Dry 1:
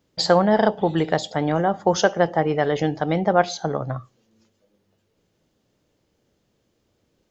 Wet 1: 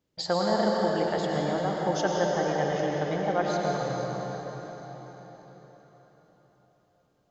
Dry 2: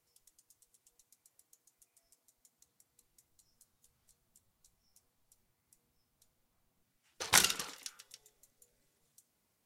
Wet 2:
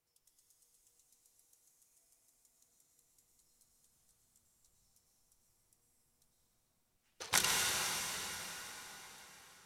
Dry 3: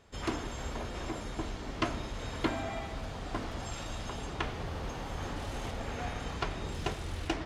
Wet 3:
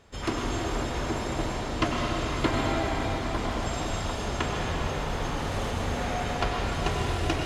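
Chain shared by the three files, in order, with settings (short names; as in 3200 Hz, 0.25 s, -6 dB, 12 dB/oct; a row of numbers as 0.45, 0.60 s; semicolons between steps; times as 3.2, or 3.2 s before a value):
plate-style reverb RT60 4.8 s, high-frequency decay 0.85×, pre-delay 85 ms, DRR -2.5 dB; normalise peaks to -12 dBFS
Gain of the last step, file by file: -10.5, -6.0, +4.0 dB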